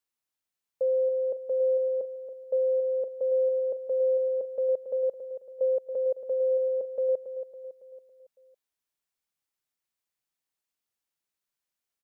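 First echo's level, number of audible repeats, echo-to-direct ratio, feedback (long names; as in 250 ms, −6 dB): −10.0 dB, 5, −9.0 dB, 50%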